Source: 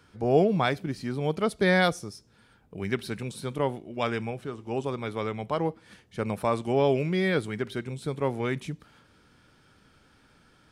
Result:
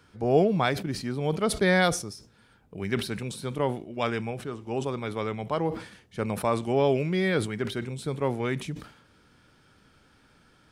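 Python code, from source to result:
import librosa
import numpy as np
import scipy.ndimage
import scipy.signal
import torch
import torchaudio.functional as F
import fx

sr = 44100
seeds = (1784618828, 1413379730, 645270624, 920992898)

y = fx.sustainer(x, sr, db_per_s=110.0)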